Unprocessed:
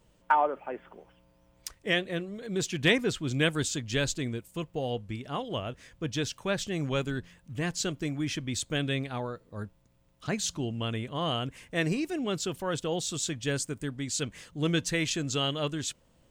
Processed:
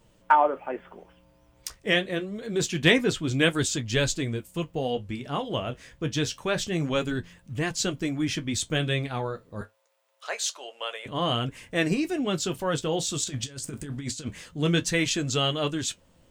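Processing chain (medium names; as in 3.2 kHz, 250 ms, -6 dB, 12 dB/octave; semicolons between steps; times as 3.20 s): 9.61–11.06 s: Chebyshev high-pass 510 Hz, order 4; 13.24–14.31 s: compressor with a negative ratio -37 dBFS, ratio -0.5; flange 0.26 Hz, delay 8.6 ms, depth 6.8 ms, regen -49%; trim +8 dB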